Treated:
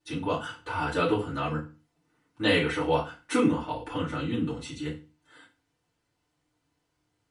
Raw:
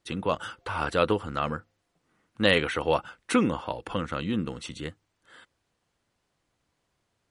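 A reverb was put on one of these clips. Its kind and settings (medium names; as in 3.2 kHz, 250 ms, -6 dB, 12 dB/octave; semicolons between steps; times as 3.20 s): FDN reverb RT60 0.32 s, low-frequency decay 1.3×, high-frequency decay 0.95×, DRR -8 dB; trim -10 dB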